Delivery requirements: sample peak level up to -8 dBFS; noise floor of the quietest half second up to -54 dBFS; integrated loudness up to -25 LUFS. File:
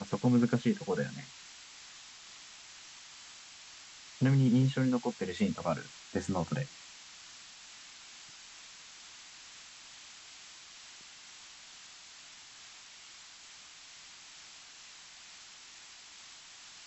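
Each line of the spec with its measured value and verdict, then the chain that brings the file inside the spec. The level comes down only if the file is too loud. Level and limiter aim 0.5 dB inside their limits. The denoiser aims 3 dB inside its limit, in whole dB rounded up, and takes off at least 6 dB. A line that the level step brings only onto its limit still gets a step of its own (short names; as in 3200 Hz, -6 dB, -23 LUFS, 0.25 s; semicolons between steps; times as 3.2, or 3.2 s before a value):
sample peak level -16.0 dBFS: OK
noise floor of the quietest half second -53 dBFS: fail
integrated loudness -31.5 LUFS: OK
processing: denoiser 6 dB, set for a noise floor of -53 dBFS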